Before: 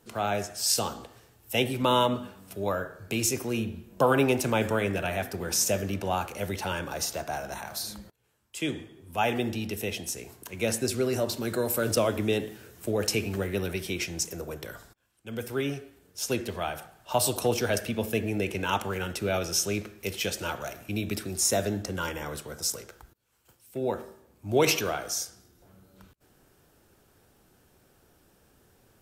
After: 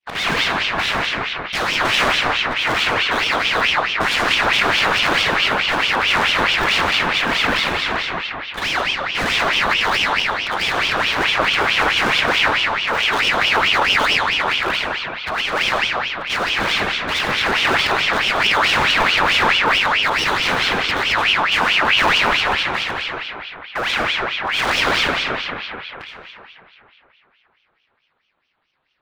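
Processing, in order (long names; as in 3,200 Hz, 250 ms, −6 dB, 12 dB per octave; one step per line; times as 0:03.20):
variable-slope delta modulation 16 kbit/s
downward expander −50 dBFS
leveller curve on the samples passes 3
in parallel at +2 dB: brickwall limiter −20 dBFS, peak gain reduction 8 dB
on the sum: soft clipping −23.5 dBFS, distortion −7 dB
comb and all-pass reverb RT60 3.1 s, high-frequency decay 0.45×, pre-delay 35 ms, DRR −2.5 dB
ring modulator whose carrier an LFO sweeps 1,900 Hz, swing 55%, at 4.6 Hz
level +6 dB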